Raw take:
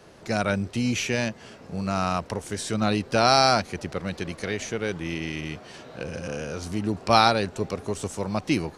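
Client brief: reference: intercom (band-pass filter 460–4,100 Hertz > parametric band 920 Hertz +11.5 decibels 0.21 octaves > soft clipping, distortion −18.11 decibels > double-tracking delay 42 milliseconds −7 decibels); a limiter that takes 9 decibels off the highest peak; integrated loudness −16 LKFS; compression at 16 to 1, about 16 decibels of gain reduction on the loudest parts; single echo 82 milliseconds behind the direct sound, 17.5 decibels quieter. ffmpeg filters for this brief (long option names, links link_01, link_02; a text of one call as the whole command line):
ffmpeg -i in.wav -filter_complex "[0:a]acompressor=threshold=-28dB:ratio=16,alimiter=limit=-23.5dB:level=0:latency=1,highpass=460,lowpass=4100,equalizer=frequency=920:width_type=o:width=0.21:gain=11.5,aecho=1:1:82:0.133,asoftclip=threshold=-28dB,asplit=2[link_01][link_02];[link_02]adelay=42,volume=-7dB[link_03];[link_01][link_03]amix=inputs=2:normalize=0,volume=23.5dB" out.wav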